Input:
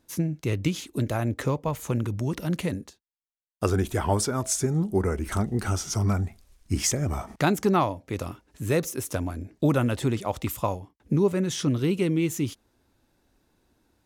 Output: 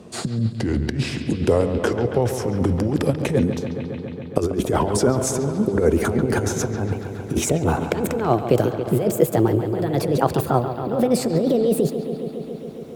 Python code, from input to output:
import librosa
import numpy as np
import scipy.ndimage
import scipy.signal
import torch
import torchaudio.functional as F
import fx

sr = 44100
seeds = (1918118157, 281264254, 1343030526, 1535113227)

y = fx.speed_glide(x, sr, from_pct=70, to_pct=147)
y = scipy.signal.sosfilt(scipy.signal.butter(2, 99.0, 'highpass', fs=sr, output='sos'), y)
y = fx.low_shelf(y, sr, hz=290.0, db=9.0)
y = fx.over_compress(y, sr, threshold_db=-24.0, ratio=-0.5)
y = fx.peak_eq(y, sr, hz=480.0, db=12.5, octaves=1.6)
y = fx.echo_bbd(y, sr, ms=138, stages=4096, feedback_pct=75, wet_db=-11.0)
y = fx.rev_fdn(y, sr, rt60_s=2.4, lf_ratio=1.0, hf_ratio=0.85, size_ms=41.0, drr_db=19.5)
y = fx.band_squash(y, sr, depth_pct=40)